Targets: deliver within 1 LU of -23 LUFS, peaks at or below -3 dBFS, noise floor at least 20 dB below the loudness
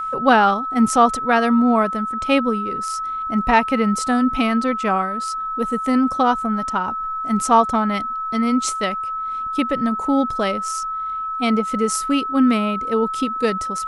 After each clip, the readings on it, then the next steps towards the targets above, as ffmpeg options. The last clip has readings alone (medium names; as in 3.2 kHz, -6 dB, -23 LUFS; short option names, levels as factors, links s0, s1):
steady tone 1.3 kHz; tone level -23 dBFS; loudness -19.5 LUFS; peak level -1.5 dBFS; loudness target -23.0 LUFS
-> -af "bandreject=f=1300:w=30"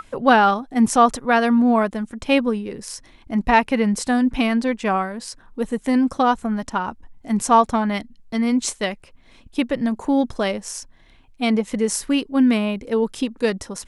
steady tone not found; loudness -20.5 LUFS; peak level -2.5 dBFS; loudness target -23.0 LUFS
-> -af "volume=0.75"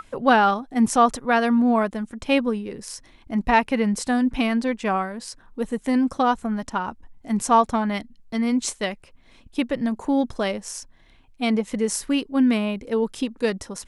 loudness -23.0 LUFS; peak level -5.0 dBFS; noise floor -53 dBFS